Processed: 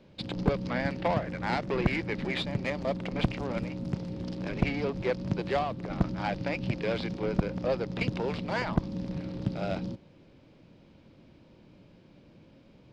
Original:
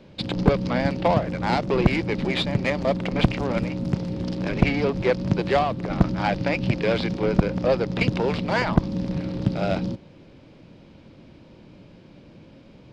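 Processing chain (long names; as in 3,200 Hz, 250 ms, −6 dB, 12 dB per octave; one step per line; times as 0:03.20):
0:00.68–0:02.38: parametric band 1,800 Hz +6 dB 0.75 octaves
level −8 dB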